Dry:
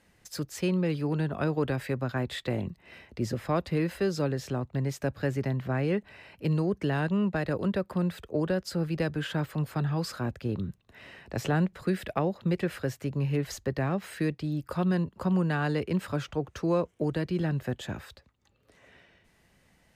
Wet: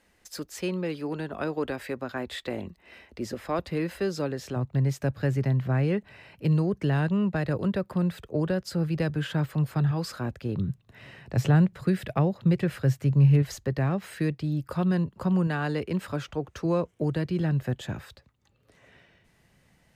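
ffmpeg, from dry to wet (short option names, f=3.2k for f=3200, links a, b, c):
-af "asetnsamples=n=441:p=0,asendcmd='3.59 equalizer g -5;4.56 equalizer g 6.5;9.91 equalizer g 0.5;10.56 equalizer g 12.5;13.42 equalizer g 5.5;15.47 equalizer g -1;16.65 equalizer g 5.5',equalizer=f=130:t=o:w=0.74:g=-13"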